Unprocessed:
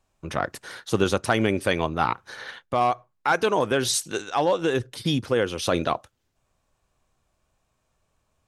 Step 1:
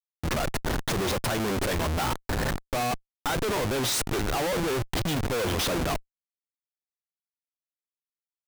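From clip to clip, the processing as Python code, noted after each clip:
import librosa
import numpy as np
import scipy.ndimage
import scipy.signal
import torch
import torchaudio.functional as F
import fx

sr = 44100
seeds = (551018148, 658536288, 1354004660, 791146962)

y = fx.schmitt(x, sr, flips_db=-34.0)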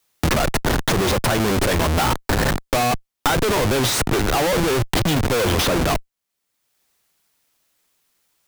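y = fx.band_squash(x, sr, depth_pct=70)
y = y * 10.0 ** (8.0 / 20.0)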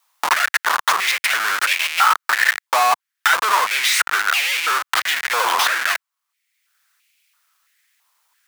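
y = fx.filter_held_highpass(x, sr, hz=3.0, low_hz=980.0, high_hz=2400.0)
y = y * 10.0 ** (1.0 / 20.0)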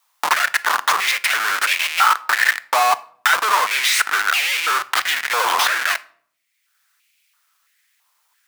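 y = fx.room_shoebox(x, sr, seeds[0], volume_m3=840.0, walls='furnished', distance_m=0.41)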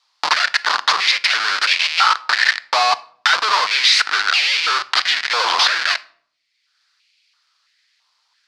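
y = fx.lowpass_res(x, sr, hz=4600.0, q=3.8)
y = y * 10.0 ** (-1.0 / 20.0)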